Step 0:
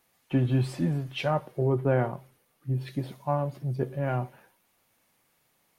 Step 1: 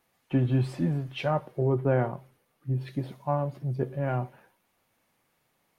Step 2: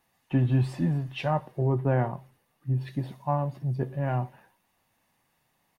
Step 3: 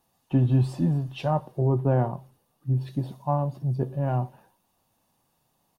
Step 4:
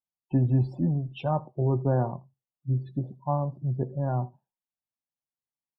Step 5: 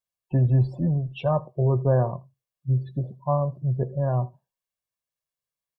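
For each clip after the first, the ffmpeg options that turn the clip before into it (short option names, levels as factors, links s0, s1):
-af "highshelf=f=3600:g=-6.5"
-af "aecho=1:1:1.1:0.34"
-af "equalizer=f=2000:w=1.7:g=-13,volume=1.33"
-af "afftdn=nr=32:nf=-40,aecho=1:1:81:0.0631,volume=0.794"
-af "aecho=1:1:1.8:0.55,volume=1.33"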